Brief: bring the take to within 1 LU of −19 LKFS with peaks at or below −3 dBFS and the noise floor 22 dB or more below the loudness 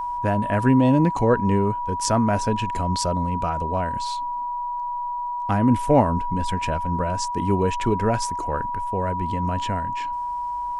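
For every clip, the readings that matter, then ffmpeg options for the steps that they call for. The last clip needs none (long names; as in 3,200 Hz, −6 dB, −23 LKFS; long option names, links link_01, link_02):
interfering tone 970 Hz; level of the tone −25 dBFS; integrated loudness −23.0 LKFS; sample peak −4.5 dBFS; target loudness −19.0 LKFS
→ -af "bandreject=frequency=970:width=30"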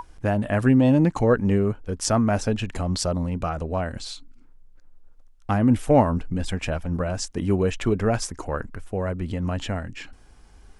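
interfering tone none found; integrated loudness −23.5 LKFS; sample peak −5.0 dBFS; target loudness −19.0 LKFS
→ -af "volume=4.5dB,alimiter=limit=-3dB:level=0:latency=1"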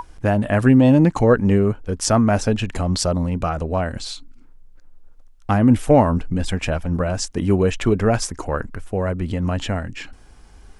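integrated loudness −19.5 LKFS; sample peak −3.0 dBFS; background noise floor −46 dBFS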